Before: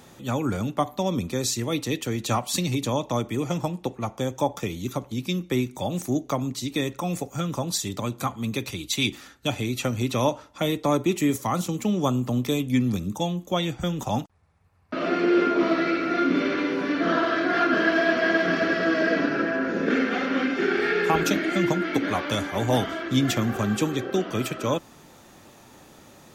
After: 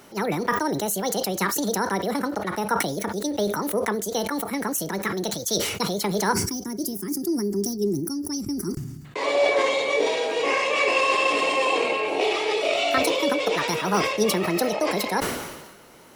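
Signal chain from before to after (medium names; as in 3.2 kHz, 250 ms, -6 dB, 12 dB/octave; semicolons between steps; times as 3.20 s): wide varispeed 1.63×; time-frequency box 6.33–9.05 s, 410–4500 Hz -20 dB; decay stretcher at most 46 dB/s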